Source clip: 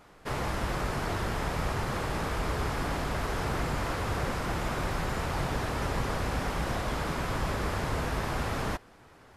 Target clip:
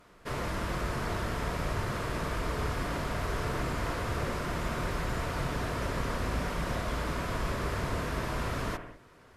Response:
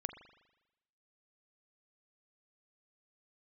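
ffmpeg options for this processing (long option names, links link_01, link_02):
-filter_complex "[0:a]asuperstop=centerf=810:order=4:qfactor=7.7[link_01];[1:a]atrim=start_sample=2205,afade=type=out:start_time=0.21:duration=0.01,atrim=end_sample=9702,asetrate=33516,aresample=44100[link_02];[link_01][link_02]afir=irnorm=-1:irlink=0,volume=-1.5dB"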